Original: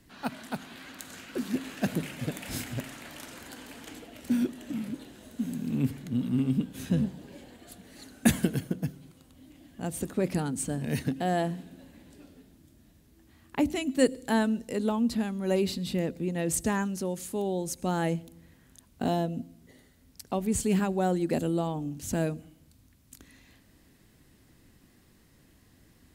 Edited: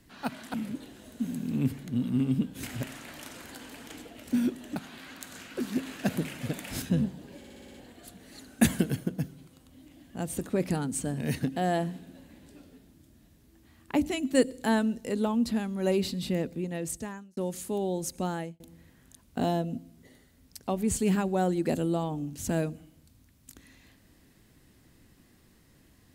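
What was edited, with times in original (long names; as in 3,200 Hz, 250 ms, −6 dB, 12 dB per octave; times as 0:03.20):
0:00.54–0:02.60: swap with 0:04.73–0:06.82
0:07.38: stutter 0.06 s, 7 plays
0:16.05–0:17.01: fade out
0:17.80–0:18.24: fade out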